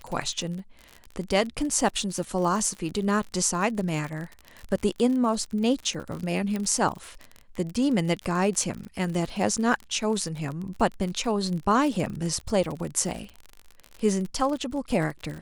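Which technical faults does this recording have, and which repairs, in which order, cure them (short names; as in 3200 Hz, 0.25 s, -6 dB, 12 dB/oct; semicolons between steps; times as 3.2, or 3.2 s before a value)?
crackle 46/s -31 dBFS
6.56 pop -17 dBFS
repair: de-click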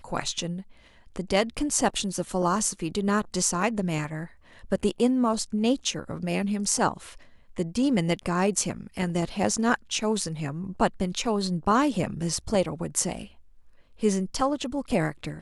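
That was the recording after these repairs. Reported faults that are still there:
none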